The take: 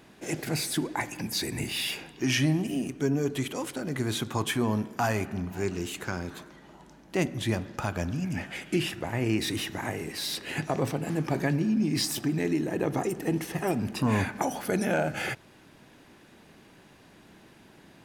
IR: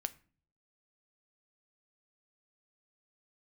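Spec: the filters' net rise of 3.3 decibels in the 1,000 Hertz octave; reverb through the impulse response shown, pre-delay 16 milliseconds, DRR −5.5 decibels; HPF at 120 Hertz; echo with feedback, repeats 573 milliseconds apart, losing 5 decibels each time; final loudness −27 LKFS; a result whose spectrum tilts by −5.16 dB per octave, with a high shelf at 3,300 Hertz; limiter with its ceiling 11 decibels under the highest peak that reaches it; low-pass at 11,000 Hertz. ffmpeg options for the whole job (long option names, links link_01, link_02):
-filter_complex "[0:a]highpass=120,lowpass=11000,equalizer=frequency=1000:width_type=o:gain=5,highshelf=frequency=3300:gain=-6.5,alimiter=limit=-22.5dB:level=0:latency=1,aecho=1:1:573|1146|1719|2292|2865|3438|4011:0.562|0.315|0.176|0.0988|0.0553|0.031|0.0173,asplit=2[link_01][link_02];[1:a]atrim=start_sample=2205,adelay=16[link_03];[link_02][link_03]afir=irnorm=-1:irlink=0,volume=6.5dB[link_04];[link_01][link_04]amix=inputs=2:normalize=0,volume=-1.5dB"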